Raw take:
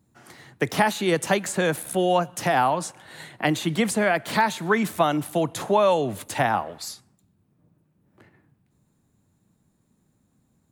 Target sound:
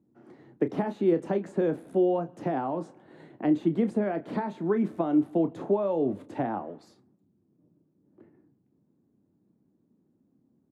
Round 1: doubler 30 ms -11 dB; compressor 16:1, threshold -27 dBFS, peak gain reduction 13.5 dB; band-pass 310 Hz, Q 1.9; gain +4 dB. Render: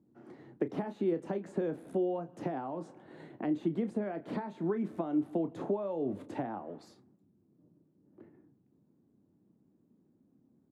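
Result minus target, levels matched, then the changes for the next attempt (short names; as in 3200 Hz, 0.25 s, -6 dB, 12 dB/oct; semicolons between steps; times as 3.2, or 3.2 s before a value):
compressor: peak gain reduction +8.5 dB
change: compressor 16:1, threshold -18 dBFS, peak gain reduction 5 dB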